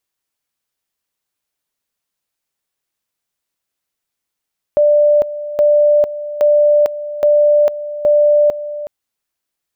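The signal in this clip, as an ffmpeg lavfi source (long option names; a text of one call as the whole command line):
ffmpeg -f lavfi -i "aevalsrc='pow(10,(-7.5-14*gte(mod(t,0.82),0.45))/20)*sin(2*PI*591*t)':duration=4.1:sample_rate=44100" out.wav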